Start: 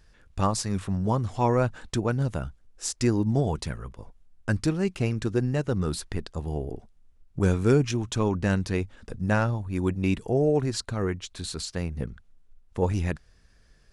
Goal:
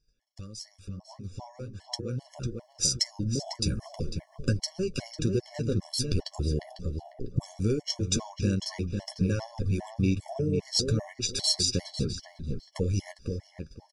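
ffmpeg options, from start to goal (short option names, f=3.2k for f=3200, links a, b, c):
-filter_complex "[0:a]agate=range=-15dB:threshold=-53dB:ratio=16:detection=peak,acompressor=threshold=-35dB:ratio=12,equalizer=f=5.3k:w=2.9:g=13.5,flanger=delay=6.7:depth=5.6:regen=-35:speed=0.43:shape=triangular,equalizer=f=1.3k:w=1.3:g=-11.5,asplit=2[a][b];[b]adelay=499,lowpass=f=2.1k:p=1,volume=-5dB,asplit=2[c][d];[d]adelay=499,lowpass=f=2.1k:p=1,volume=0.29,asplit=2[e][f];[f]adelay=499,lowpass=f=2.1k:p=1,volume=0.29,asplit=2[g][h];[h]adelay=499,lowpass=f=2.1k:p=1,volume=0.29[i];[a][c][e][g][i]amix=inputs=5:normalize=0,dynaudnorm=f=370:g=13:m=15dB,afftfilt=real='re*gt(sin(2*PI*2.5*pts/sr)*(1-2*mod(floor(b*sr/1024/570),2)),0)':imag='im*gt(sin(2*PI*2.5*pts/sr)*(1-2*mod(floor(b*sr/1024/570),2)),0)':win_size=1024:overlap=0.75,volume=1dB"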